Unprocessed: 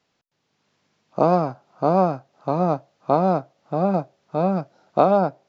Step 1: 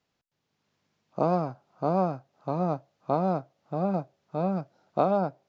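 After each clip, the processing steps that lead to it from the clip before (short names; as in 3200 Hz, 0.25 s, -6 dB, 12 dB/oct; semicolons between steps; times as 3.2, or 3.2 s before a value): low shelf 110 Hz +8.5 dB; gain -8 dB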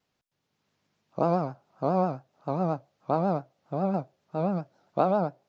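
vibrato 7.4 Hz 90 cents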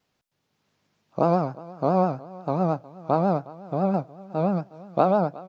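feedback echo 0.362 s, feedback 28%, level -20 dB; gain +4 dB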